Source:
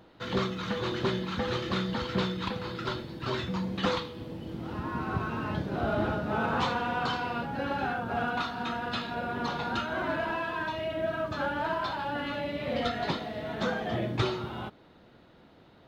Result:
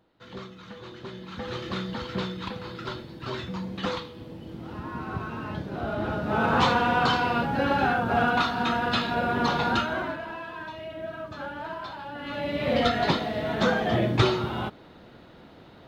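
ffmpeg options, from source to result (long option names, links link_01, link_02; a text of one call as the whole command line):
ffmpeg -i in.wav -af "volume=19.5dB,afade=type=in:start_time=1.1:duration=0.55:silence=0.334965,afade=type=in:start_time=6:duration=0.68:silence=0.354813,afade=type=out:start_time=9.7:duration=0.48:silence=0.237137,afade=type=in:start_time=12.19:duration=0.48:silence=0.251189" out.wav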